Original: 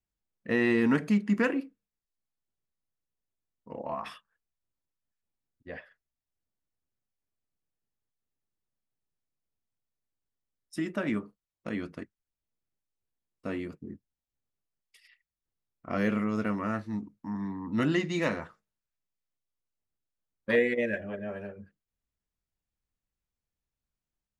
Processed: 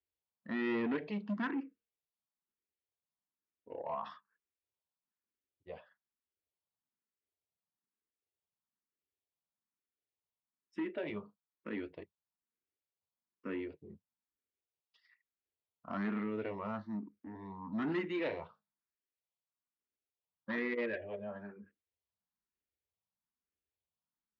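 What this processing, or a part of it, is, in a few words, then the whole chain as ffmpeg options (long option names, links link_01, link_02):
barber-pole phaser into a guitar amplifier: -filter_complex "[0:a]asplit=2[link_01][link_02];[link_02]afreqshift=1.1[link_03];[link_01][link_03]amix=inputs=2:normalize=1,asoftclip=type=tanh:threshold=-27dB,highpass=88,equalizer=frequency=130:width_type=q:width=4:gain=-9,equalizer=frequency=410:width_type=q:width=4:gain=4,equalizer=frequency=980:width_type=q:width=4:gain=4,lowpass=frequency=4000:width=0.5412,lowpass=frequency=4000:width=1.3066,volume=-3.5dB"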